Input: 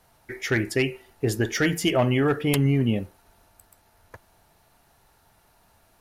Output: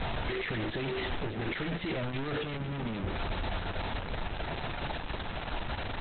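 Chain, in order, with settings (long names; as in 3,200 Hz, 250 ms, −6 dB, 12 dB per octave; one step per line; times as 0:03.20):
sign of each sample alone
low-pass filter 6,500 Hz 12 dB per octave
low-shelf EQ 65 Hz +7 dB
notch filter 1,100 Hz, Q 9.4
level −4.5 dB
Opus 8 kbit/s 48,000 Hz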